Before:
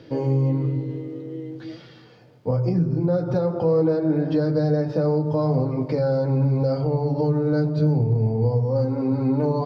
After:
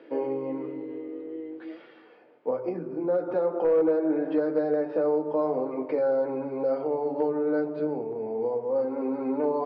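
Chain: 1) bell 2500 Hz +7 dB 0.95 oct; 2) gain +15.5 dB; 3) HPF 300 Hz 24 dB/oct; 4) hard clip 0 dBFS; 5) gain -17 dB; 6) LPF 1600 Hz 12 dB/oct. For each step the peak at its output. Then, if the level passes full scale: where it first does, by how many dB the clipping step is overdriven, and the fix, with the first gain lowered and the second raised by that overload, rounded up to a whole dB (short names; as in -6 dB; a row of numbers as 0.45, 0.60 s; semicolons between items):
-11.5, +4.0, +3.5, 0.0, -17.0, -16.5 dBFS; step 2, 3.5 dB; step 2 +11.5 dB, step 5 -13 dB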